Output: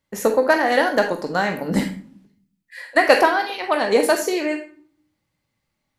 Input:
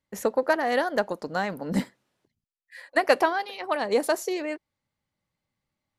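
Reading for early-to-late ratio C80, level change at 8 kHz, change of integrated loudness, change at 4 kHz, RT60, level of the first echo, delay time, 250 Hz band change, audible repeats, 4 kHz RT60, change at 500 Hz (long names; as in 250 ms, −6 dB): 13.5 dB, +8.0 dB, +7.0 dB, +8.0 dB, 0.55 s, no echo audible, no echo audible, +7.0 dB, no echo audible, 0.30 s, +6.5 dB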